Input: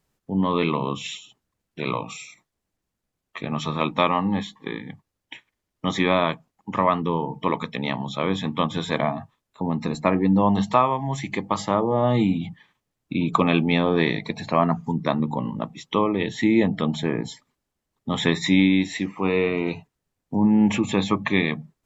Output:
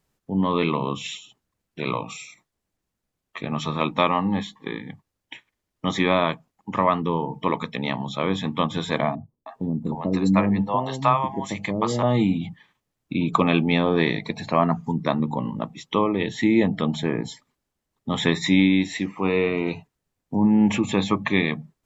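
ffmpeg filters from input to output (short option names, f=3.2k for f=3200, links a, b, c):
-filter_complex "[0:a]asettb=1/sr,asplit=3[a][b][c];[a]atrim=end=9.154[d];[b]atrim=start=9.15:end=12.03,asetpts=PTS-STARTPTS,afade=t=in:d=0.004:c=qsin,afade=t=out:st=2.876:d=0.004:c=qsin,acrossover=split=510[e][f];[f]adelay=310[g];[e][g]amix=inputs=2:normalize=0,atrim=end_sample=127008[h];[c]atrim=start=12.026[i];[d][h]acrossfade=d=0.004:c1=hsin:c2=qsin[j];[j][i]acrossfade=d=0.004:c1=qsin:c2=hsin"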